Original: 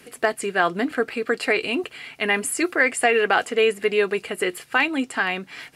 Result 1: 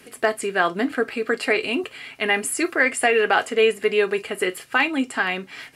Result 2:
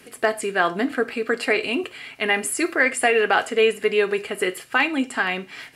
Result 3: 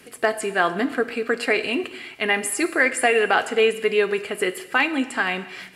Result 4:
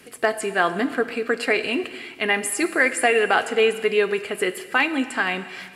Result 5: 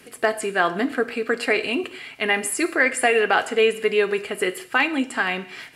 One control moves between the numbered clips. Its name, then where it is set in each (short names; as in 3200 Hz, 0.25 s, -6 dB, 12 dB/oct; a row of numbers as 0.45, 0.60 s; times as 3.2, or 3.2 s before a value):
non-linear reverb, gate: 80, 130, 350, 540, 230 ms